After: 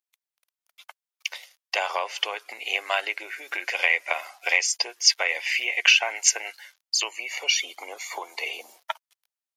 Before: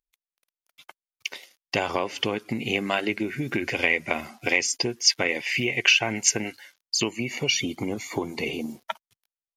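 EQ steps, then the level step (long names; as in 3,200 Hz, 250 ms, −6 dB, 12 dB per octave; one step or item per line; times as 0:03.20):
inverse Chebyshev high-pass filter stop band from 180 Hz, stop band 60 dB
+1.5 dB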